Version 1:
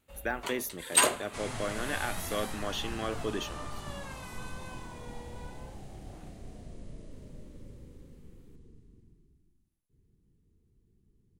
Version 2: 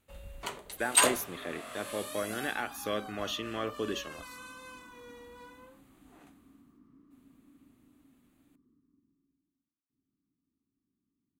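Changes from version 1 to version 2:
speech: entry +0.55 s
second sound: add pair of resonant band-passes 570 Hz, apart 2.1 octaves

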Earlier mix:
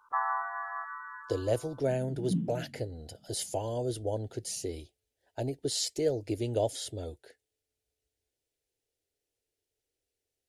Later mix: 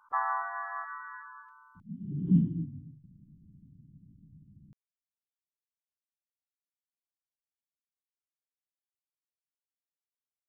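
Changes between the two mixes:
speech: muted
second sound: add low-shelf EQ 160 Hz +12 dB
master: add low-shelf EQ 160 Hz +4.5 dB

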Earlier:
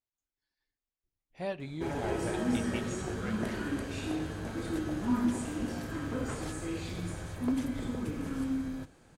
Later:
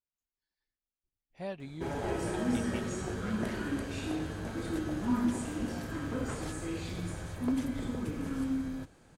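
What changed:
speech −3.0 dB
reverb: off

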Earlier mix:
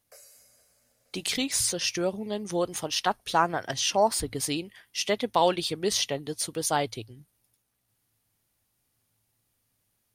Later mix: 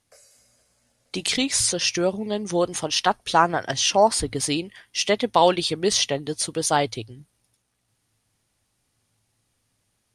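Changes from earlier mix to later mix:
speech +5.5 dB
master: add low-pass filter 9,900 Hz 24 dB per octave

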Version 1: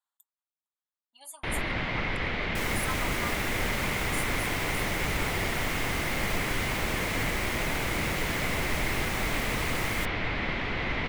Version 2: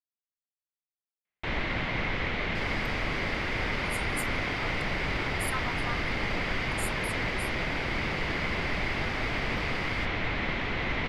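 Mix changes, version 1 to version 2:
speech: entry +2.65 s
second sound: add pair of resonant band-passes 2,700 Hz, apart 1.6 octaves

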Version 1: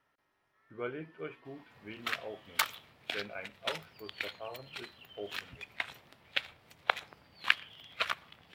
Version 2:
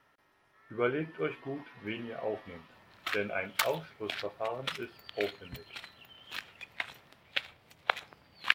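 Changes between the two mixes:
speech +8.5 dB
background: entry +1.00 s

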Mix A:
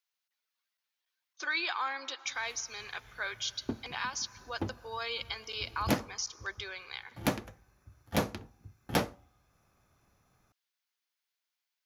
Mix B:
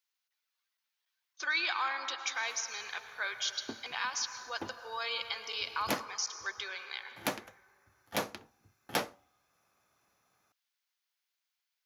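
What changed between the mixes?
speech: send +11.5 dB
master: add high-pass filter 610 Hz 6 dB per octave

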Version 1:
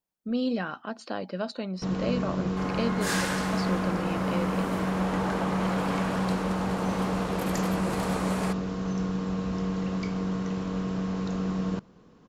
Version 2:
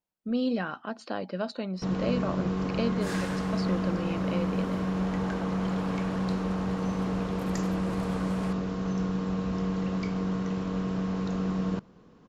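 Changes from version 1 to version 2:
second sound −8.0 dB
master: add high-shelf EQ 6,400 Hz −6 dB

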